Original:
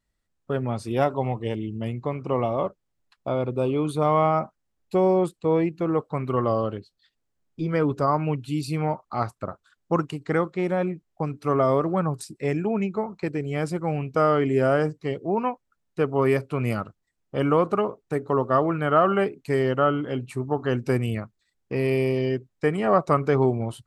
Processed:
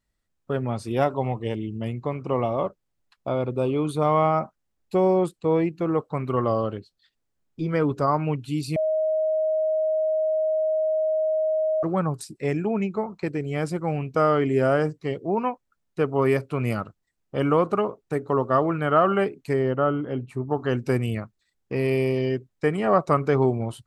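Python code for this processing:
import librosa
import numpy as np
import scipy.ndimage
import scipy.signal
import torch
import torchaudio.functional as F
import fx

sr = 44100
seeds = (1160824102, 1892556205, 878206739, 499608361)

y = fx.high_shelf(x, sr, hz=2100.0, db=-11.5, at=(19.53, 20.51))
y = fx.edit(y, sr, fx.bleep(start_s=8.76, length_s=3.07, hz=628.0, db=-20.0), tone=tone)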